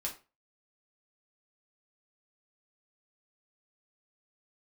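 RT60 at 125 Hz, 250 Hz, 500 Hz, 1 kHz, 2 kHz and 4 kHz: 0.35, 0.30, 0.30, 0.30, 0.30, 0.25 seconds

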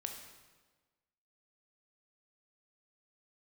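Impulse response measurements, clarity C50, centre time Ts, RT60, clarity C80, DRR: 5.5 dB, 35 ms, 1.4 s, 7.5 dB, 3.0 dB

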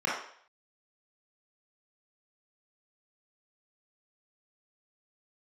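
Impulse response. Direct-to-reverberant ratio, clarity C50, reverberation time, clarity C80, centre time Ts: −6.5 dB, 1.0 dB, 0.60 s, 6.0 dB, 52 ms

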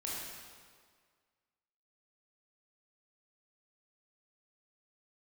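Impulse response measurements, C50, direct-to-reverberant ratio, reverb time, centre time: −2.0 dB, −5.5 dB, 1.8 s, 114 ms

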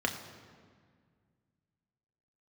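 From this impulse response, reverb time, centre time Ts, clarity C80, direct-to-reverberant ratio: 1.9 s, 27 ms, 9.5 dB, 2.5 dB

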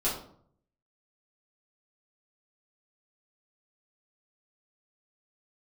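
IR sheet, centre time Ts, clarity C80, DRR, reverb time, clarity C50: 38 ms, 9.0 dB, −9.0 dB, 0.60 s, 5.0 dB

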